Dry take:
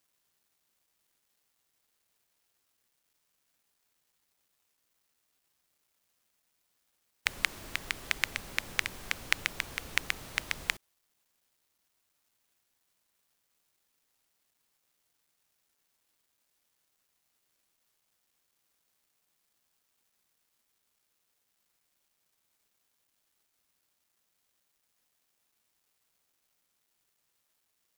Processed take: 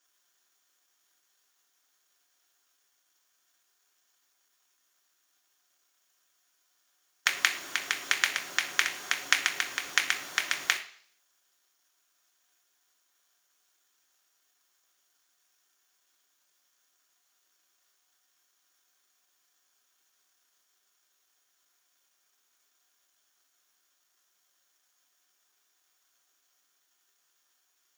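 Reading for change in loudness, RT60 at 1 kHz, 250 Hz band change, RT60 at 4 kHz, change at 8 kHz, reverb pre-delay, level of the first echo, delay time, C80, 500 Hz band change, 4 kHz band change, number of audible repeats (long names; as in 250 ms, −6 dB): +5.0 dB, 0.55 s, −2.5 dB, 0.65 s, +8.0 dB, 3 ms, no echo audible, no echo audible, 15.5 dB, +1.0 dB, +6.0 dB, no echo audible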